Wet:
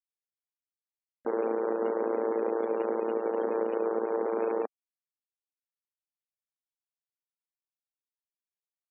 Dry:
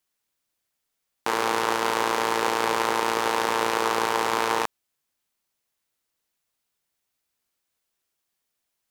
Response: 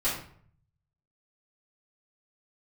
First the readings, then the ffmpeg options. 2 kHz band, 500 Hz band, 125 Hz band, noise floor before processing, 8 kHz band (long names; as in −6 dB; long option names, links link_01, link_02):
−19.0 dB, +0.5 dB, below −10 dB, −80 dBFS, below −40 dB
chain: -af "afftfilt=real='re*gte(hypot(re,im),0.0794)':imag='im*gte(hypot(re,im),0.0794)':win_size=1024:overlap=0.75,equalizer=frequency=250:width_type=o:width=1:gain=4,equalizer=frequency=500:width_type=o:width=1:gain=8,equalizer=frequency=1000:width_type=o:width=1:gain=-10,equalizer=frequency=2000:width_type=o:width=1:gain=-11,alimiter=limit=-17dB:level=0:latency=1:release=237,acompressor=mode=upward:threshold=-48dB:ratio=2.5,volume=-2dB"